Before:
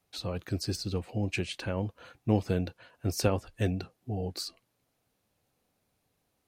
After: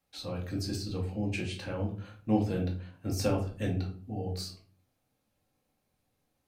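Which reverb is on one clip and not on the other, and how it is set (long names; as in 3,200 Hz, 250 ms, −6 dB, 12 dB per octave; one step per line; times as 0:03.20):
rectangular room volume 350 cubic metres, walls furnished, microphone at 2.2 metres
level −6 dB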